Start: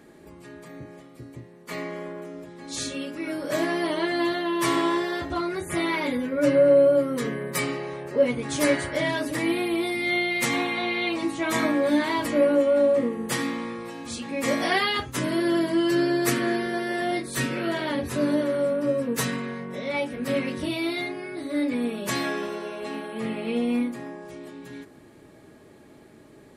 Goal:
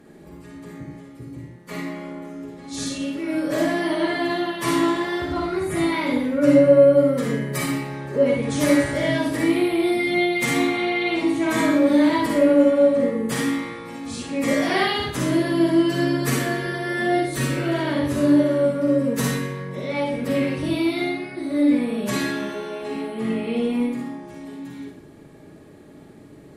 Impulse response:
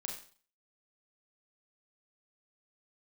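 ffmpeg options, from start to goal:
-filter_complex "[0:a]lowshelf=f=440:g=6.5[s0];[1:a]atrim=start_sample=2205,asetrate=33516,aresample=44100[s1];[s0][s1]afir=irnorm=-1:irlink=0"

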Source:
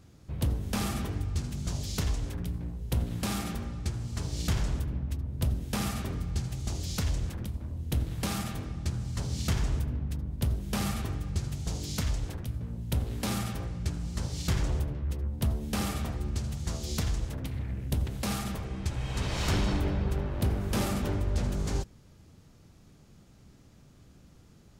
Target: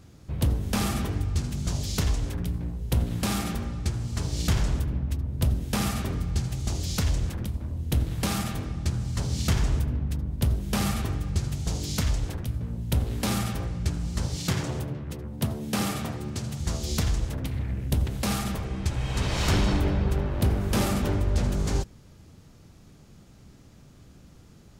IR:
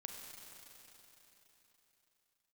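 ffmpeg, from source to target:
-filter_complex "[0:a]asettb=1/sr,asplit=3[s0][s1][s2];[s0]atrim=end=14.364[s3];[s1]atrim=start=14.36:end=16.6,asetpts=PTS-STARTPTS,afade=t=in:d=0.004:c=qsin,afade=t=out:st=2.236:d=0.004:c=qsin,highpass=f=100:w=0.5412,highpass=f=100:w=1.3066[s4];[s2]atrim=start=16.596[s5];[s3][s4]acrossfade=d=0.004:c1=hsin:c2=qsin[s6];[s6][s5]acrossfade=d=0.004:c1=qsin:c2=hsin,volume=1.68"

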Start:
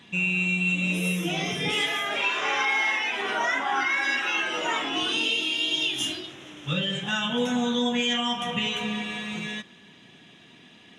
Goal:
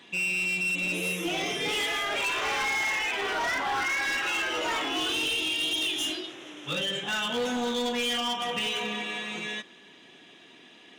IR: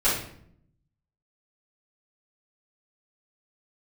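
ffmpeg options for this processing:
-af "highpass=120,lowshelf=f=250:t=q:w=1.5:g=-7,volume=18.8,asoftclip=hard,volume=0.0531"

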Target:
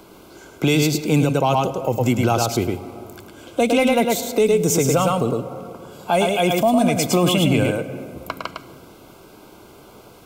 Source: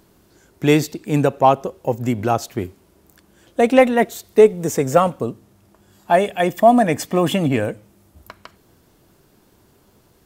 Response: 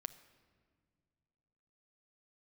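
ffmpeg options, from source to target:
-filter_complex "[0:a]asplit=2[s0][s1];[1:a]atrim=start_sample=2205,adelay=106[s2];[s1][s2]afir=irnorm=-1:irlink=0,volume=0.841[s3];[s0][s3]amix=inputs=2:normalize=0,acrossover=split=200|3000[s4][s5][s6];[s5]acompressor=threshold=0.02:ratio=2.5[s7];[s4][s7][s6]amix=inputs=3:normalize=0,asuperstop=centerf=1800:order=8:qfactor=4.8,bass=f=250:g=-9,treble=f=4000:g=-6,alimiter=level_in=9.44:limit=0.891:release=50:level=0:latency=1,volume=0.447"

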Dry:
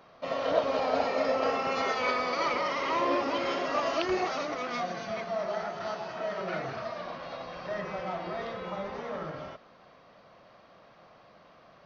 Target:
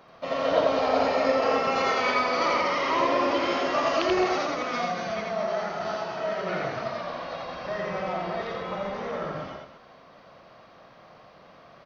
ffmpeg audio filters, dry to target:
-af "aecho=1:1:84.55|215.7:0.794|0.282,volume=1.33"

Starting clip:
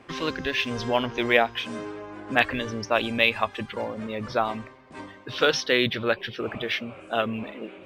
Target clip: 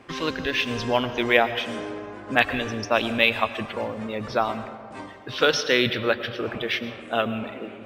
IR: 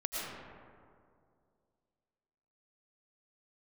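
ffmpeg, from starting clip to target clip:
-filter_complex "[0:a]asplit=2[s0][s1];[1:a]atrim=start_sample=2205,highshelf=f=6300:g=10.5[s2];[s1][s2]afir=irnorm=-1:irlink=0,volume=0.188[s3];[s0][s3]amix=inputs=2:normalize=0"

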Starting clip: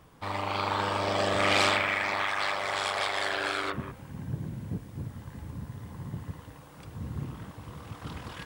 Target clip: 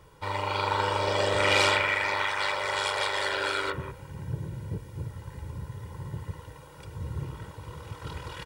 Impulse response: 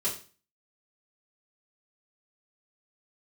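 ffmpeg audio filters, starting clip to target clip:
-af "aecho=1:1:2.1:0.73"

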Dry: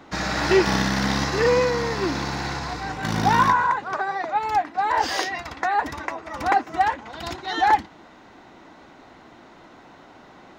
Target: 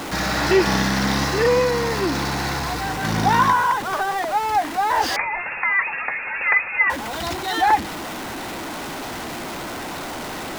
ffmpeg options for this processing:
-filter_complex "[0:a]aeval=exprs='val(0)+0.5*0.0531*sgn(val(0))':c=same,asettb=1/sr,asplit=3[s0][s1][s2];[s0]atrim=end=5.164[s3];[s1]atrim=start=5.16:end=6.9,asetpts=PTS-STARTPTS,afade=t=in:d=0.004:c=qsin,afade=t=out:st=1.736:d=0.004:c=qsin,lowpass=f=2400:t=q:w=0.5098,lowpass=f=2400:t=q:w=0.6013,lowpass=f=2400:t=q:w=0.9,lowpass=f=2400:t=q:w=2.563,afreqshift=-2800[s4];[s2]atrim=start=6.896[s5];[s3][s4]acrossfade=d=0.004:c1=hsin:c2=qsin[s6];[s6][s5]acrossfade=d=0.004:c1=qsin:c2=hsin"

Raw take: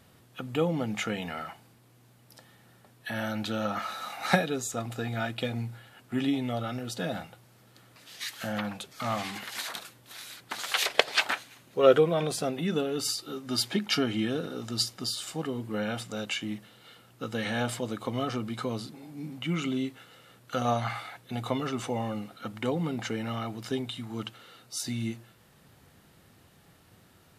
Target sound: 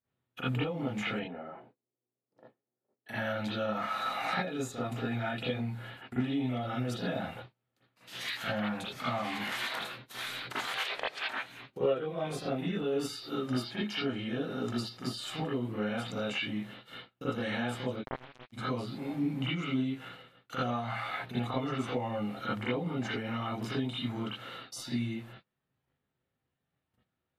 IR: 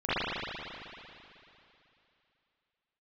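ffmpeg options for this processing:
-filter_complex "[0:a]agate=range=0.0178:threshold=0.00251:ratio=16:detection=peak,acompressor=threshold=0.0112:ratio=12,asettb=1/sr,asplit=3[s0][s1][s2];[s0]atrim=end=1.194[s3];[s1]atrim=start=1.19:end=3.09,asetpts=PTS-STARTPTS,afade=t=in:d=0.004:c=qsin,afade=t=out:st=1.896:d=0.004:c=qsin,bandpass=f=410:t=q:w=1.7:csg=0[s4];[s2]atrim=start=3.086[s5];[s3][s4]acrossfade=d=0.004:c1=hsin:c2=qsin[s6];[s6][s5]acrossfade=d=0.004:c1=qsin:c2=hsin,asplit=3[s7][s8][s9];[s7]afade=t=out:st=17.95:d=0.02[s10];[s8]acrusher=bits=4:mix=0:aa=0.5,afade=t=in:st=17.95:d=0.02,afade=t=out:st=18.52:d=0.02[s11];[s9]afade=t=in:st=18.52:d=0.02[s12];[s10][s11][s12]amix=inputs=3:normalize=0[s13];[1:a]atrim=start_sample=2205,atrim=end_sample=3969[s14];[s13][s14]afir=irnorm=-1:irlink=0"

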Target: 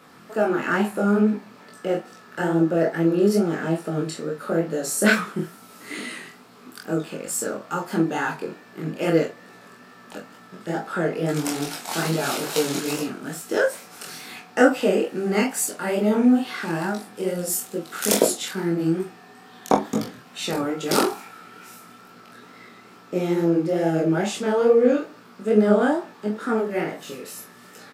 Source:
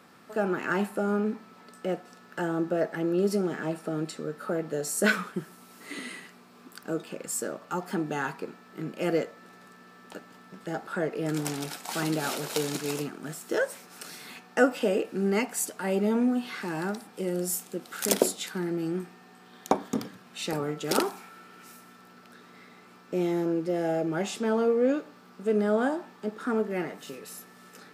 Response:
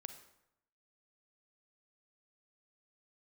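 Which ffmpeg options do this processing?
-af "aecho=1:1:24|43:0.531|0.316,flanger=delay=17.5:depth=7.2:speed=2.3,volume=2.37"

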